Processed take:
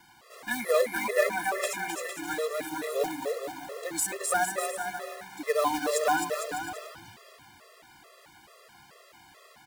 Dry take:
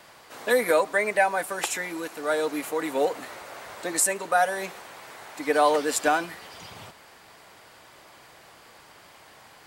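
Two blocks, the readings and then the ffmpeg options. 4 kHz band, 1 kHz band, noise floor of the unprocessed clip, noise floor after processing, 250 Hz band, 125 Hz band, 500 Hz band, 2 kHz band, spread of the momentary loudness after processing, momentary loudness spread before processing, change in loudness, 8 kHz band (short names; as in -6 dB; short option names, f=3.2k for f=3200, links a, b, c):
-3.0 dB, -4.5 dB, -52 dBFS, -56 dBFS, -4.0 dB, -3.0 dB, -3.5 dB, -4.0 dB, 12 LU, 20 LU, -4.5 dB, -3.5 dB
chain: -af "aecho=1:1:260|455|601.2|710.9|793.2:0.631|0.398|0.251|0.158|0.1,acrusher=bits=3:mode=log:mix=0:aa=0.000001,afftfilt=real='re*gt(sin(2*PI*2.3*pts/sr)*(1-2*mod(floor(b*sr/1024/350),2)),0)':imag='im*gt(sin(2*PI*2.3*pts/sr)*(1-2*mod(floor(b*sr/1024/350),2)),0)':win_size=1024:overlap=0.75,volume=-3dB"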